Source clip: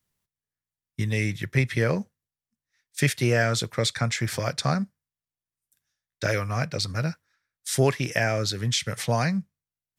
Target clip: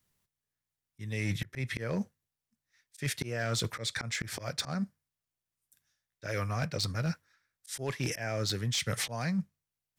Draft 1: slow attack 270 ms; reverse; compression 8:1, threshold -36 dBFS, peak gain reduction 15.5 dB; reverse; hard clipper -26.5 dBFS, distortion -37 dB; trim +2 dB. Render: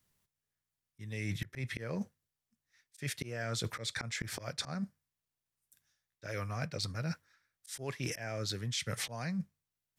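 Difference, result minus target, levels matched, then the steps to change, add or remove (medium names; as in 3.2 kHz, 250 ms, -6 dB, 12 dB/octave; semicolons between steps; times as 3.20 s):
compression: peak gain reduction +5 dB
change: compression 8:1, threshold -30 dBFS, peak gain reduction 10 dB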